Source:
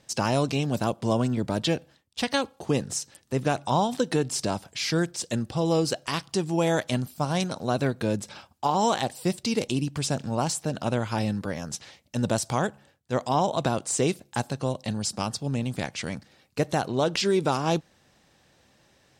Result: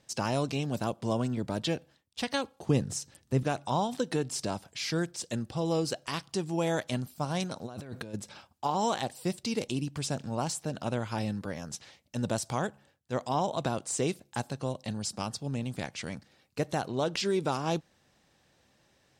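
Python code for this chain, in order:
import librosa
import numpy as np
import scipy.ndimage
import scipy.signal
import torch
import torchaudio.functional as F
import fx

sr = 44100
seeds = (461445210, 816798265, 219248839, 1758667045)

y = fx.low_shelf(x, sr, hz=220.0, db=10.5, at=(2.67, 3.43))
y = fx.over_compress(y, sr, threshold_db=-35.0, ratio=-1.0, at=(7.65, 8.13), fade=0.02)
y = F.gain(torch.from_numpy(y), -5.5).numpy()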